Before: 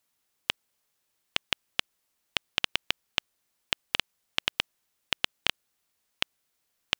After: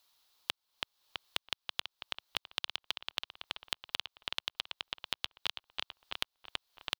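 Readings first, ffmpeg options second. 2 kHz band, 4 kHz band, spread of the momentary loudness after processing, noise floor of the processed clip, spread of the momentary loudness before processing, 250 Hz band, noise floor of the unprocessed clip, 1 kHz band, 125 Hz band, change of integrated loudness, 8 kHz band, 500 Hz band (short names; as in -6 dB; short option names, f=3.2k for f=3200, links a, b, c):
-9.0 dB, -6.0 dB, 6 LU, under -85 dBFS, 5 LU, -9.5 dB, -77 dBFS, -5.0 dB, -9.5 dB, -8.0 dB, -7.0 dB, -7.5 dB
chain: -filter_complex "[0:a]equalizer=f=125:t=o:w=1:g=-10,equalizer=f=250:t=o:w=1:g=-8,equalizer=f=500:t=o:w=1:g=-3,equalizer=f=1k:t=o:w=1:g=5,equalizer=f=2k:t=o:w=1:g=-6,equalizer=f=4k:t=o:w=1:g=11,equalizer=f=8k:t=o:w=1:g=-6,asplit=2[a][b];[b]adelay=329,lowpass=f=2.7k:p=1,volume=-4.5dB,asplit=2[c][d];[d]adelay=329,lowpass=f=2.7k:p=1,volume=0.45,asplit=2[e][f];[f]adelay=329,lowpass=f=2.7k:p=1,volume=0.45,asplit=2[g][h];[h]adelay=329,lowpass=f=2.7k:p=1,volume=0.45,asplit=2[i][j];[j]adelay=329,lowpass=f=2.7k:p=1,volume=0.45,asplit=2[k][l];[l]adelay=329,lowpass=f=2.7k:p=1,volume=0.45[m];[c][e][g][i][k][m]amix=inputs=6:normalize=0[n];[a][n]amix=inputs=2:normalize=0,acompressor=threshold=-40dB:ratio=4,volume=4.5dB"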